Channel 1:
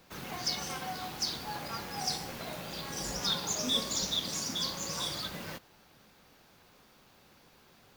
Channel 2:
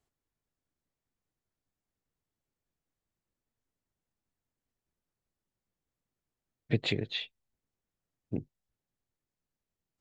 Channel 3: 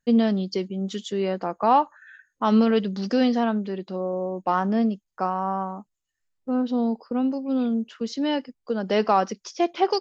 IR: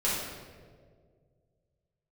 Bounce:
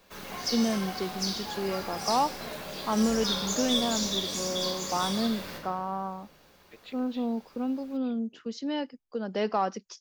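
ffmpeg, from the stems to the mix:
-filter_complex "[0:a]equalizer=f=130:t=o:w=0.55:g=-13,volume=-3.5dB,asplit=2[a][b];[b]volume=-6.5dB[c];[1:a]highpass=490,volume=-15.5dB[d];[2:a]acontrast=37,adelay=450,volume=-12dB[e];[3:a]atrim=start_sample=2205[f];[c][f]afir=irnorm=-1:irlink=0[g];[a][d][e][g]amix=inputs=4:normalize=0"

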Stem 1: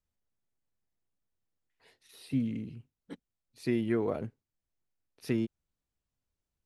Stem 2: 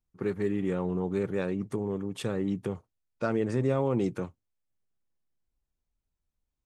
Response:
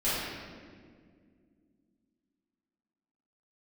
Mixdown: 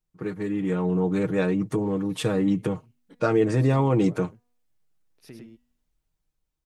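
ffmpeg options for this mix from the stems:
-filter_complex "[0:a]bandreject=f=242.6:t=h:w=4,bandreject=f=485.2:t=h:w=4,bandreject=f=727.8:t=h:w=4,bandreject=f=970.4:t=h:w=4,bandreject=f=1.213k:t=h:w=4,bandreject=f=1.4556k:t=h:w=4,bandreject=f=1.6982k:t=h:w=4,bandreject=f=1.9408k:t=h:w=4,bandreject=f=2.1834k:t=h:w=4,bandreject=f=2.426k:t=h:w=4,bandreject=f=2.6686k:t=h:w=4,bandreject=f=2.9112k:t=h:w=4,bandreject=f=3.1538k:t=h:w=4,bandreject=f=3.3964k:t=h:w=4,bandreject=f=3.639k:t=h:w=4,bandreject=f=3.8816k:t=h:w=4,bandreject=f=4.1242k:t=h:w=4,bandreject=f=4.3668k:t=h:w=4,bandreject=f=4.6094k:t=h:w=4,bandreject=f=4.852k:t=h:w=4,bandreject=f=5.0946k:t=h:w=4,bandreject=f=5.3372k:t=h:w=4,bandreject=f=5.5798k:t=h:w=4,bandreject=f=5.8224k:t=h:w=4,bandreject=f=6.065k:t=h:w=4,bandreject=f=6.3076k:t=h:w=4,bandreject=f=6.5502k:t=h:w=4,bandreject=f=6.7928k:t=h:w=4,bandreject=f=7.0354k:t=h:w=4,bandreject=f=7.278k:t=h:w=4,bandreject=f=7.5206k:t=h:w=4,bandreject=f=7.7632k:t=h:w=4,bandreject=f=8.0058k:t=h:w=4,bandreject=f=8.2484k:t=h:w=4,bandreject=f=8.491k:t=h:w=4,bandreject=f=8.7336k:t=h:w=4,bandreject=f=8.9762k:t=h:w=4,acompressor=threshold=-43dB:ratio=2,volume=-5.5dB,asplit=2[a][b];[b]volume=-3.5dB[c];[1:a]aecho=1:1:6.4:0.63,dynaudnorm=f=320:g=5:m=6.5dB,volume=-0.5dB[d];[c]aecho=0:1:102:1[e];[a][d][e]amix=inputs=3:normalize=0"

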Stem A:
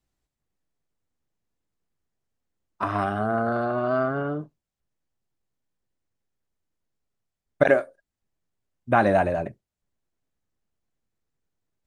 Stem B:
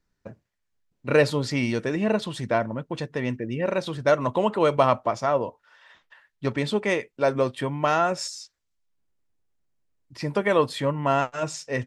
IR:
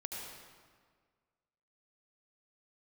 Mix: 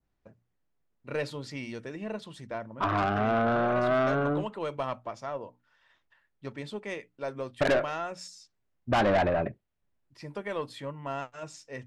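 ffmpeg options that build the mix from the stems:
-filter_complex "[0:a]lowpass=2.7k,volume=1.5dB[a];[1:a]bandreject=f=60:t=h:w=6,bandreject=f=120:t=h:w=6,bandreject=f=180:t=h:w=6,bandreject=f=240:t=h:w=6,bandreject=f=300:t=h:w=6,volume=-12.5dB[b];[a][b]amix=inputs=2:normalize=0,adynamicequalizer=threshold=0.01:dfrequency=2900:dqfactor=0.95:tfrequency=2900:tqfactor=0.95:attack=5:release=100:ratio=0.375:range=2:mode=boostabove:tftype=bell,aeval=exprs='(tanh(10*val(0)+0.2)-tanh(0.2))/10':c=same"

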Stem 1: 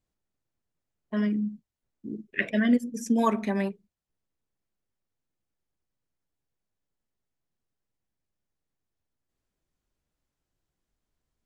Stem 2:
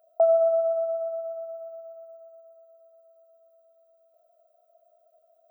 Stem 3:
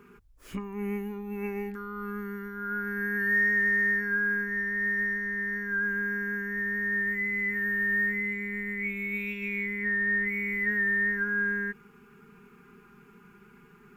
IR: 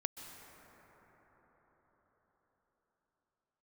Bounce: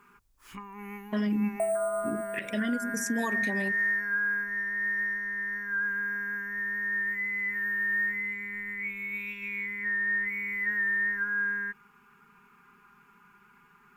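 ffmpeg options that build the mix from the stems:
-filter_complex "[0:a]highshelf=f=4.3k:g=12,acompressor=threshold=-25dB:ratio=6,volume=3dB[a];[1:a]acrusher=samples=5:mix=1:aa=0.000001,adelay=1400,volume=-8.5dB[b];[2:a]lowshelf=f=730:t=q:w=3:g=-7.5,volume=-2.5dB[c];[a][b][c]amix=inputs=3:normalize=0,alimiter=limit=-21dB:level=0:latency=1:release=160"

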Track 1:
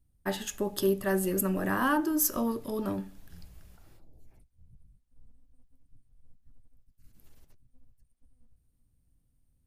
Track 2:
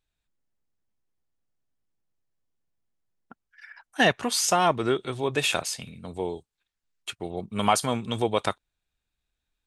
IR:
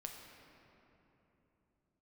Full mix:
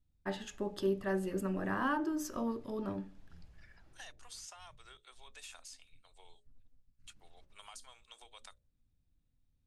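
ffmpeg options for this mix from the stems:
-filter_complex "[0:a]volume=-5.5dB[a];[1:a]highpass=580,acrossover=split=1500|5500[b][c][d];[b]acompressor=threshold=-34dB:ratio=4[e];[c]acompressor=threshold=-46dB:ratio=4[f];[d]acompressor=threshold=-39dB:ratio=4[g];[e][f][g]amix=inputs=3:normalize=0,aderivative,volume=-3.5dB[h];[a][h]amix=inputs=2:normalize=0,lowpass=7.2k,highshelf=f=5.2k:g=-8.5,bandreject=f=60:t=h:w=6,bandreject=f=120:t=h:w=6,bandreject=f=180:t=h:w=6,bandreject=f=240:t=h:w=6,bandreject=f=300:t=h:w=6,bandreject=f=360:t=h:w=6,bandreject=f=420:t=h:w=6,bandreject=f=480:t=h:w=6,bandreject=f=540:t=h:w=6,bandreject=f=600:t=h:w=6"

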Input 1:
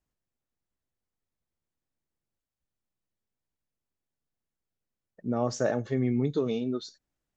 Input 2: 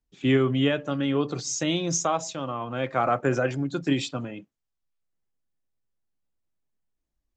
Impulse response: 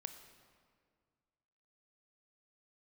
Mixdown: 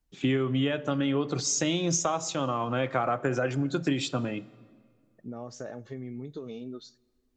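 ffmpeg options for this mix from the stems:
-filter_complex "[0:a]acompressor=threshold=-29dB:ratio=6,volume=-7dB,asplit=2[a][b];[b]volume=-14.5dB[c];[1:a]acompressor=threshold=-28dB:ratio=6,volume=1.5dB,asplit=2[d][e];[e]volume=-4dB[f];[2:a]atrim=start_sample=2205[g];[c][f]amix=inputs=2:normalize=0[h];[h][g]afir=irnorm=-1:irlink=0[i];[a][d][i]amix=inputs=3:normalize=0"

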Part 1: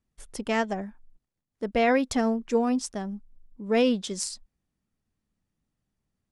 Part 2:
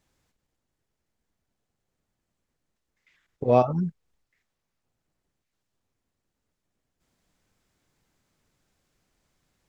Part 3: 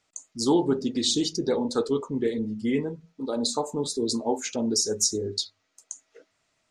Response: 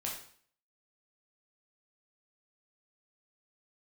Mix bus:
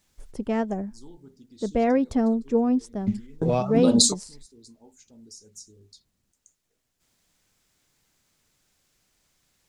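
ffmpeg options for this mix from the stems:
-filter_complex "[0:a]tiltshelf=f=910:g=8.5,volume=-3.5dB[a];[1:a]highshelf=f=2.1k:g=10.5,acrossover=split=140[b][c];[c]acompressor=threshold=-22dB:ratio=2.5[d];[b][d]amix=inputs=2:normalize=0,volume=-1dB,asplit=2[e][f];[2:a]bass=f=250:g=14,treble=f=4k:g=12,adelay=550,volume=2dB[g];[f]apad=whole_len=320107[h];[g][h]sidechaingate=range=-33dB:threshold=-59dB:ratio=16:detection=peak[i];[a][e][i]amix=inputs=3:normalize=0"

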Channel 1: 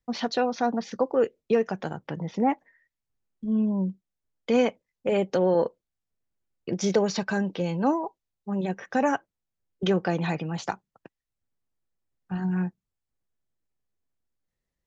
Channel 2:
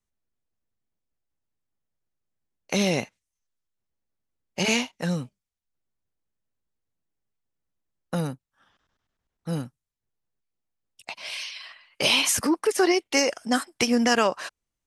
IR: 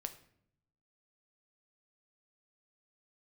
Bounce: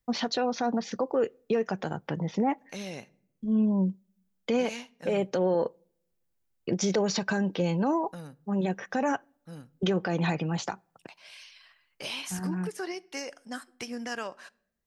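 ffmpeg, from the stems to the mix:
-filter_complex "[0:a]highshelf=f=11k:g=8,volume=1dB,asplit=2[a][b];[b]volume=-23.5dB[c];[1:a]equalizer=f=1.6k:t=o:w=0.27:g=5,volume=-17.5dB,asplit=3[d][e][f];[e]volume=-7.5dB[g];[f]apad=whole_len=655604[h];[a][h]sidechaincompress=threshold=-42dB:ratio=8:attack=35:release=1390[i];[2:a]atrim=start_sample=2205[j];[c][g]amix=inputs=2:normalize=0[k];[k][j]afir=irnorm=-1:irlink=0[l];[i][d][l]amix=inputs=3:normalize=0,alimiter=limit=-17.5dB:level=0:latency=1:release=83"

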